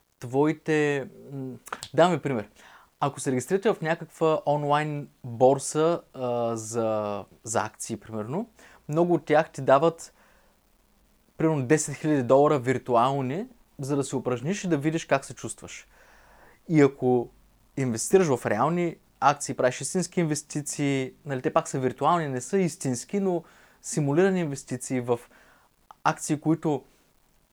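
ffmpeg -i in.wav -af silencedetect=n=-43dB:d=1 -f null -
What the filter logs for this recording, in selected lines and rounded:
silence_start: 10.08
silence_end: 11.39 | silence_duration: 1.31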